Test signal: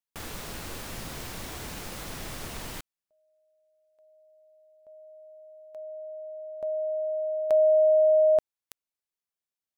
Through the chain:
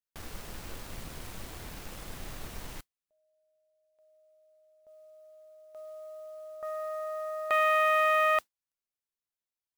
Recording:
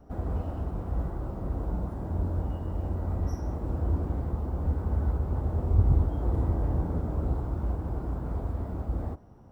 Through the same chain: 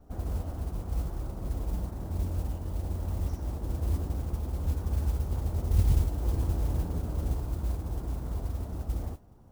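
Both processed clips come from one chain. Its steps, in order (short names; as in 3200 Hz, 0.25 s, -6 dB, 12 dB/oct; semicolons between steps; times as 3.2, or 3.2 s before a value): self-modulated delay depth 0.69 ms; low shelf 62 Hz +8 dB; modulation noise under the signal 25 dB; gain -5 dB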